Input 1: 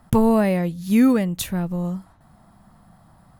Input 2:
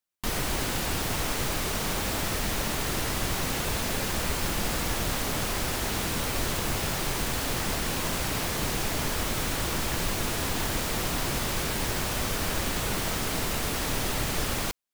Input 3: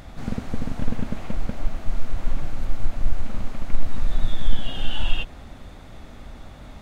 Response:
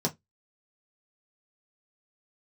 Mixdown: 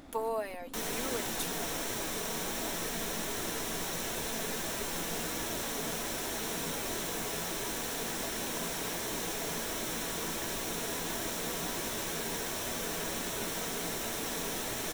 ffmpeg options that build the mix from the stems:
-filter_complex "[0:a]highpass=f=420:w=0.5412,highpass=f=420:w=1.3066,aecho=1:1:4.4:0.59,volume=0.188[s0];[1:a]flanger=delay=3:depth=1.5:regen=-62:speed=1.4:shape=triangular,adelay=500,volume=0.596,asplit=2[s1][s2];[s2]volume=0.237[s3];[2:a]equalizer=f=290:w=1.5:g=14.5,acompressor=threshold=0.0562:ratio=6,asoftclip=type=tanh:threshold=0.0422,volume=0.335[s4];[3:a]atrim=start_sample=2205[s5];[s3][s5]afir=irnorm=-1:irlink=0[s6];[s0][s1][s4][s6]amix=inputs=4:normalize=0,bass=f=250:g=-8,treble=f=4000:g=3"

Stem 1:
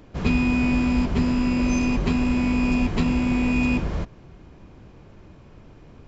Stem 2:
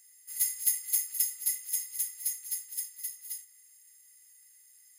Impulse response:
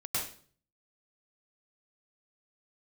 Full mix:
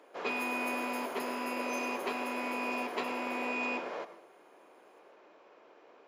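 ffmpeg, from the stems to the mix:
-filter_complex "[0:a]highpass=f=440:w=0.5412,highpass=f=440:w=1.3066,volume=0.794,asplit=2[s0][s1];[s1]volume=0.158[s2];[1:a]volume=0.237,asplit=2[s3][s4];[s4]volume=0.473[s5];[2:a]atrim=start_sample=2205[s6];[s2][s5]amix=inputs=2:normalize=0[s7];[s7][s6]afir=irnorm=-1:irlink=0[s8];[s0][s3][s8]amix=inputs=3:normalize=0,lowpass=f=2000:p=1"

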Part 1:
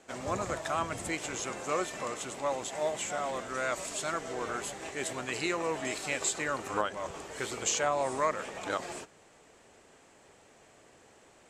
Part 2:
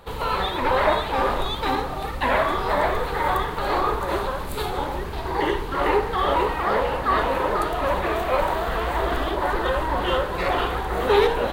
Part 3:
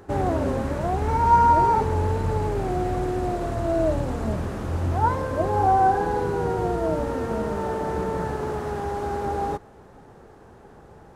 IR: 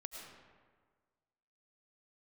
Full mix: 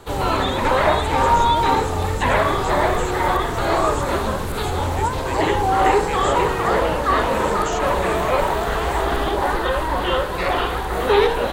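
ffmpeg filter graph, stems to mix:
-filter_complex "[0:a]volume=0.944[s0];[1:a]volume=1.26[s1];[2:a]volume=0.891[s2];[s0][s1][s2]amix=inputs=3:normalize=0,acrossover=split=3900[s3][s4];[s4]acompressor=threshold=0.01:ratio=4:attack=1:release=60[s5];[s3][s5]amix=inputs=2:normalize=0,equalizer=f=9000:w=0.5:g=6.5"

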